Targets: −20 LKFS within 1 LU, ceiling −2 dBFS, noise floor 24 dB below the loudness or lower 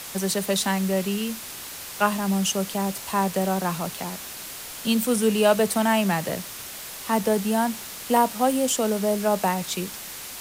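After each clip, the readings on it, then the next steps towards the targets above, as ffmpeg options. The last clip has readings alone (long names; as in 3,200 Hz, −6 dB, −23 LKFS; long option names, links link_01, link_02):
background noise floor −38 dBFS; target noise floor −49 dBFS; integrated loudness −24.5 LKFS; sample peak −7.5 dBFS; target loudness −20.0 LKFS
→ -af "afftdn=noise_reduction=11:noise_floor=-38"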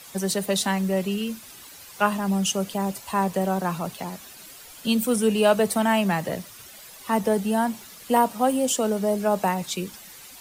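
background noise floor −45 dBFS; target noise floor −48 dBFS
→ -af "afftdn=noise_reduction=6:noise_floor=-45"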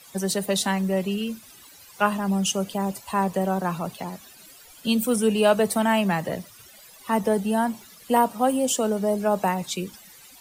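background noise floor −49 dBFS; integrated loudness −24.0 LKFS; sample peak −7.5 dBFS; target loudness −20.0 LKFS
→ -af "volume=4dB"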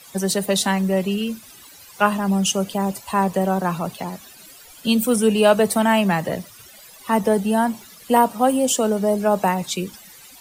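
integrated loudness −20.0 LKFS; sample peak −3.5 dBFS; background noise floor −45 dBFS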